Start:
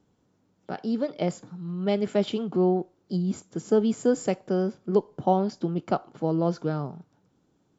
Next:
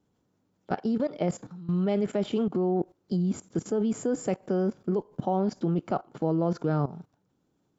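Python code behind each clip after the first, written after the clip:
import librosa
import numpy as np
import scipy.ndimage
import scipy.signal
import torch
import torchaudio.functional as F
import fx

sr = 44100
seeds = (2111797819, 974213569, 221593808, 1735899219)

y = fx.dynamic_eq(x, sr, hz=4300.0, q=0.92, threshold_db=-52.0, ratio=4.0, max_db=-7)
y = fx.level_steps(y, sr, step_db=16)
y = y * librosa.db_to_amplitude(7.0)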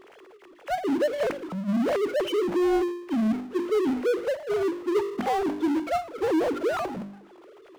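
y = fx.sine_speech(x, sr)
y = fx.hum_notches(y, sr, base_hz=50, count=8)
y = fx.power_curve(y, sr, exponent=0.5)
y = y * librosa.db_to_amplitude(-2.5)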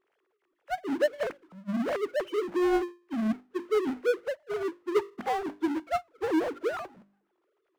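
y = fx.peak_eq(x, sr, hz=1600.0, db=4.5, octaves=1.4)
y = fx.upward_expand(y, sr, threshold_db=-37.0, expansion=2.5)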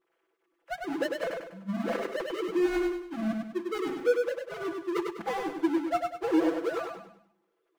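y = fx.notch(x, sr, hz=1900.0, q=30.0)
y = y + 0.86 * np.pad(y, (int(6.0 * sr / 1000.0), 0))[:len(y)]
y = fx.echo_feedback(y, sr, ms=99, feedback_pct=38, wet_db=-4)
y = y * librosa.db_to_amplitude(-3.5)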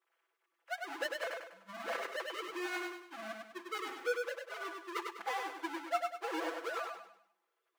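y = scipy.signal.sosfilt(scipy.signal.butter(2, 840.0, 'highpass', fs=sr, output='sos'), x)
y = y * librosa.db_to_amplitude(-1.0)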